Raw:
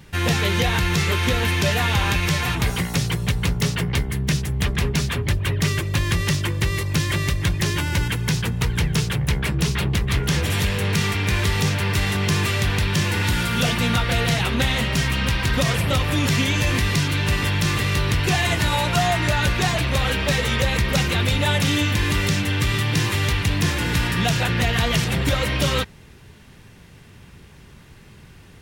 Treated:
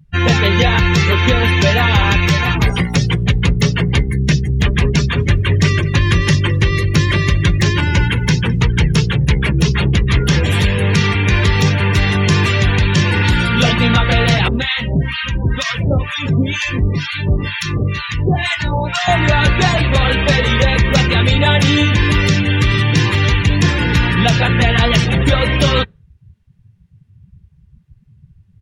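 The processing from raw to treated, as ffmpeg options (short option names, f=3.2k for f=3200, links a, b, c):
-filter_complex "[0:a]asplit=3[a][b][c];[a]afade=t=out:st=5.16:d=0.02[d];[b]aecho=1:1:209|418|627|836:0.299|0.116|0.0454|0.0177,afade=t=in:st=5.16:d=0.02,afade=t=out:st=8.66:d=0.02[e];[c]afade=t=in:st=8.66:d=0.02[f];[d][e][f]amix=inputs=3:normalize=0,asettb=1/sr,asplit=3[g][h][i];[g]atrim=end=14.484[j];[h]atrim=start=14.48:end=19.08,asetpts=PTS-STARTPTS,afade=t=in:d=0.004:c=qsin,afade=t=out:st=4.596:d=0.004:c=qsin,acrossover=split=900[k][l];[k]aeval=exprs='val(0)*(1-1/2+1/2*cos(2*PI*2.1*n/s))':c=same[m];[l]aeval=exprs='val(0)*(1-1/2-1/2*cos(2*PI*2.1*n/s))':c=same[n];[m][n]amix=inputs=2:normalize=0[o];[i]atrim=start=19.076[p];[j][o]acrossfade=d=0.004:c1=hsin:c2=qsin[q];[q][p]acrossfade=d=0.004:c1=qsin:c2=hsin,afftdn=nr=34:nf=-30,volume=8dB"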